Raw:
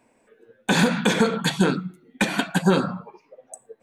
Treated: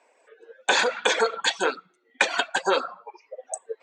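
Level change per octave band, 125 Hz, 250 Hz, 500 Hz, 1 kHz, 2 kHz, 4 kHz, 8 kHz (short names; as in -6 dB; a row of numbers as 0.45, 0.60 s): under -30 dB, -17.5 dB, -1.0 dB, +1.5 dB, +1.5 dB, +1.5 dB, +1.0 dB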